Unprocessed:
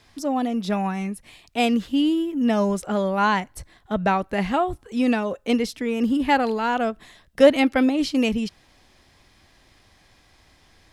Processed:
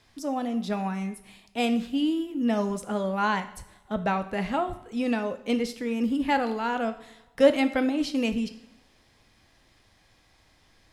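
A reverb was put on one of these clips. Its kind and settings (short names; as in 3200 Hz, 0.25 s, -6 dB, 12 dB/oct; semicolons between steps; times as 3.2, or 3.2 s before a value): two-slope reverb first 0.65 s, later 1.9 s, from -20 dB, DRR 9 dB; gain -5.5 dB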